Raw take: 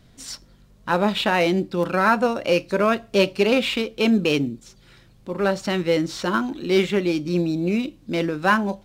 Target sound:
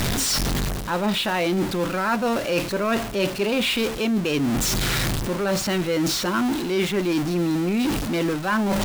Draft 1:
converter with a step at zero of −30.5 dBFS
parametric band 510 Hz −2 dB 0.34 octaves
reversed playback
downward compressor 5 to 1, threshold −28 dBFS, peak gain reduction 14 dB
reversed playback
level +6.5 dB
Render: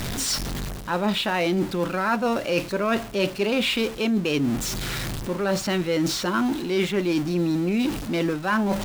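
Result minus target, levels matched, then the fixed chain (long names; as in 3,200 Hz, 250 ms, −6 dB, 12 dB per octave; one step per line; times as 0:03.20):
converter with a step at zero: distortion −7 dB
converter with a step at zero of −22.5 dBFS
parametric band 510 Hz −2 dB 0.34 octaves
reversed playback
downward compressor 5 to 1, threshold −28 dBFS, peak gain reduction 14.5 dB
reversed playback
level +6.5 dB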